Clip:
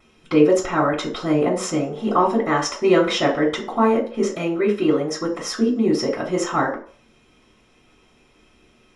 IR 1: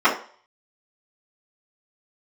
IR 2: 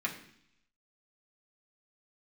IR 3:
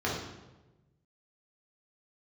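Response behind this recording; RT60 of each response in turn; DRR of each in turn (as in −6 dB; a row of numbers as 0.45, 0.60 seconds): 1; 0.45, 0.65, 1.1 seconds; −14.0, −3.0, −6.0 decibels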